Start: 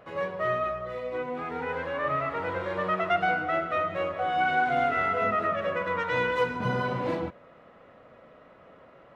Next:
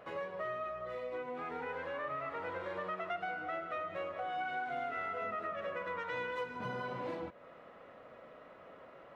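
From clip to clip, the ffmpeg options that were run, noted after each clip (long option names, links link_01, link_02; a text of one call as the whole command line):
ffmpeg -i in.wav -af "bass=frequency=250:gain=-6,treble=frequency=4000:gain=-1,acompressor=threshold=-39dB:ratio=3,volume=-1dB" out.wav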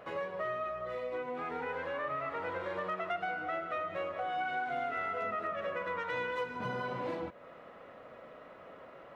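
ffmpeg -i in.wav -af "asoftclip=type=hard:threshold=-29dB,volume=3dB" out.wav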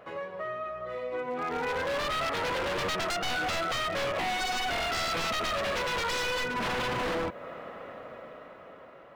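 ffmpeg -i in.wav -af "dynaudnorm=framelen=360:gausssize=9:maxgain=11.5dB,aeval=exprs='0.0531*(abs(mod(val(0)/0.0531+3,4)-2)-1)':channel_layout=same" out.wav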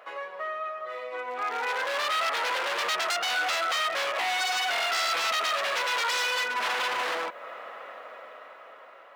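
ffmpeg -i in.wav -af "highpass=760,volume=4.5dB" out.wav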